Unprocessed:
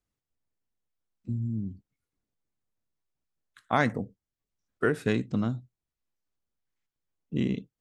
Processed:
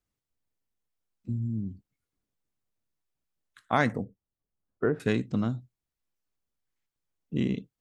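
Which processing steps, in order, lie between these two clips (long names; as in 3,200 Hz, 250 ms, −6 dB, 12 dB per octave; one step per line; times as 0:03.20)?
0:04.04–0:05.00: low-pass filter 1,100 Hz 12 dB per octave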